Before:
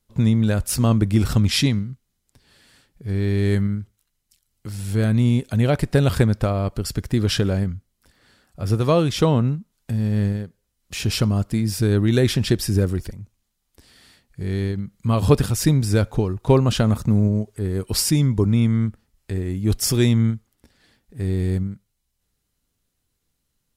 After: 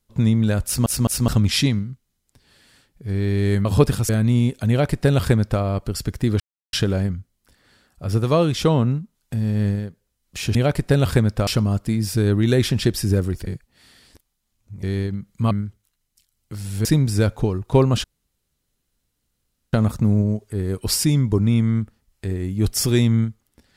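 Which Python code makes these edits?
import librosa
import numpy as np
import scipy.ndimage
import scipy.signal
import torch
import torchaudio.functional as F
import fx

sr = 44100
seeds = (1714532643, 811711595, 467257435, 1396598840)

y = fx.edit(x, sr, fx.stutter_over(start_s=0.65, slice_s=0.21, count=3),
    fx.swap(start_s=3.65, length_s=1.34, other_s=15.16, other_length_s=0.44),
    fx.duplicate(start_s=5.59, length_s=0.92, to_s=11.12),
    fx.insert_silence(at_s=7.3, length_s=0.33),
    fx.reverse_span(start_s=13.12, length_s=1.36),
    fx.insert_room_tone(at_s=16.79, length_s=1.69), tone=tone)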